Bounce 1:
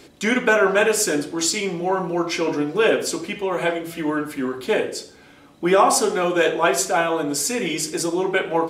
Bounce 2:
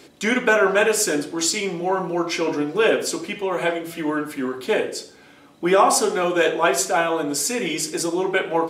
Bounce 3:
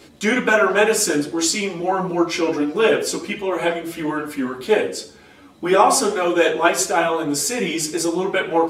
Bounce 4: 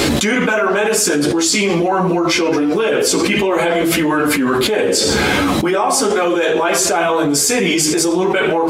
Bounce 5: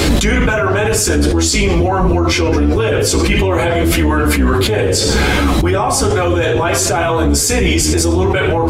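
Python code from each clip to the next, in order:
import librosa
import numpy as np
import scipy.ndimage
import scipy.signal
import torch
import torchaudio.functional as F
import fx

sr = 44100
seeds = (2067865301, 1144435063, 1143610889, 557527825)

y1 = fx.highpass(x, sr, hz=130.0, slope=6)
y2 = fx.low_shelf(y1, sr, hz=98.0, db=10.5)
y2 = fx.ensemble(y2, sr)
y2 = y2 * librosa.db_to_amplitude(4.5)
y3 = fx.env_flatten(y2, sr, amount_pct=100)
y3 = y3 * librosa.db_to_amplitude(-5.0)
y4 = fx.octave_divider(y3, sr, octaves=2, level_db=4.0)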